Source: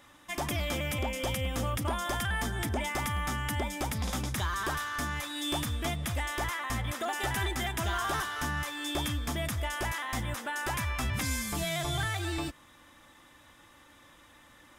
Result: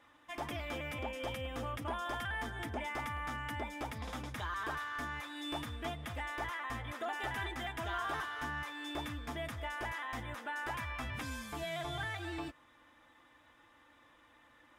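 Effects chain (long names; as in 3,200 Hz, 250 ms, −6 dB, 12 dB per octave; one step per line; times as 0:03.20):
bass and treble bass −7 dB, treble −12 dB
notch comb filter 190 Hz
level −4 dB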